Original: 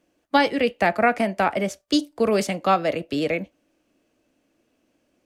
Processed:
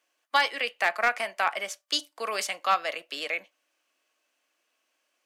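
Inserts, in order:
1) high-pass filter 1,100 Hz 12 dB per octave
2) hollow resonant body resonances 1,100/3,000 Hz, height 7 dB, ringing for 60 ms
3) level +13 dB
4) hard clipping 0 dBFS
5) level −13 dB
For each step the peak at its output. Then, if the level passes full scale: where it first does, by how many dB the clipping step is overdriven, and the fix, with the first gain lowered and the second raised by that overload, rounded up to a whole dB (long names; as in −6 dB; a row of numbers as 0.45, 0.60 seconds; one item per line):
−9.0, −9.0, +4.0, 0.0, −13.0 dBFS
step 3, 4.0 dB
step 3 +9 dB, step 5 −9 dB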